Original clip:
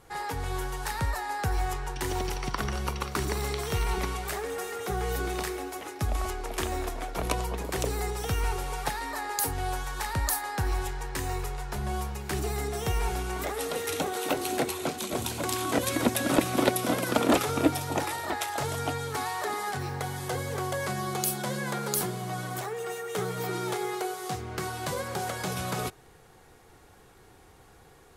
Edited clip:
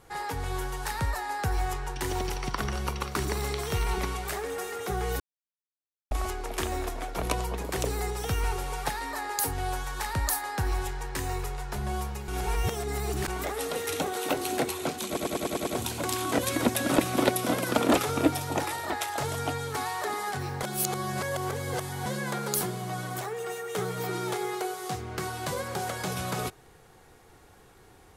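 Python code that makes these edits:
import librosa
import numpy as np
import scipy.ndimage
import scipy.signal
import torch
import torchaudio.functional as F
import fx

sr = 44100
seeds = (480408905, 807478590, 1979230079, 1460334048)

y = fx.edit(x, sr, fx.silence(start_s=5.2, length_s=0.91),
    fx.reverse_span(start_s=12.28, length_s=1.0),
    fx.stutter(start_s=15.07, slice_s=0.1, count=7),
    fx.reverse_span(start_s=20.03, length_s=1.43), tone=tone)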